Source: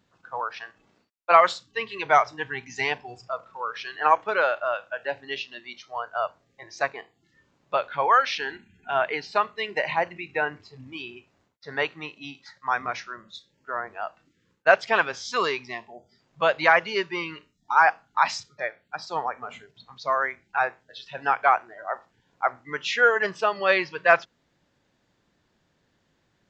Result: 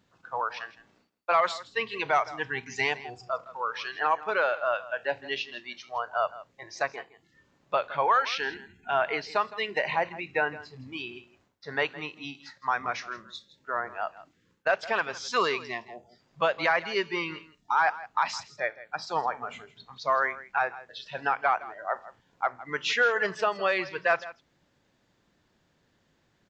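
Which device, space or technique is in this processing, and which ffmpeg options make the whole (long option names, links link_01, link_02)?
soft clipper into limiter: -af "asoftclip=type=tanh:threshold=-4.5dB,alimiter=limit=-14dB:level=0:latency=1:release=329,aecho=1:1:163:0.141"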